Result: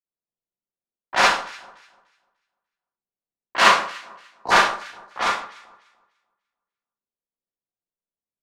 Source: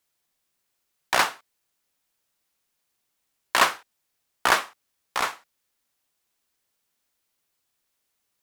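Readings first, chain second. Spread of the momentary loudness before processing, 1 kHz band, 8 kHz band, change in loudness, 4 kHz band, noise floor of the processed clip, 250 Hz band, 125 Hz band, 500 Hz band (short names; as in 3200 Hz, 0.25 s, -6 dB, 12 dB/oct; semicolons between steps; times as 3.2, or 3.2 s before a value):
11 LU, +6.0 dB, +1.0 dB, +5.0 dB, +5.0 dB, under -85 dBFS, +6.0 dB, +5.5 dB, +6.0 dB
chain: Schroeder reverb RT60 0.38 s, combs from 32 ms, DRR -8.5 dB; low-pass opened by the level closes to 630 Hz, open at -15 dBFS; LPF 5800 Hz 12 dB/oct; in parallel at -10 dB: hard clip -12 dBFS, distortion -9 dB; on the sum: spectral gain 4.15–4.51, 1100–3800 Hz -25 dB; on a send: echo with dull and thin repeats by turns 0.148 s, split 1400 Hz, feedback 61%, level -13 dB; on the sum: three-band expander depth 40%; gain -6.5 dB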